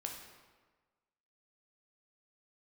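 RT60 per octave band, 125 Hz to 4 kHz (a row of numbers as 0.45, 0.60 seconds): 1.4, 1.3, 1.4, 1.4, 1.2, 0.95 seconds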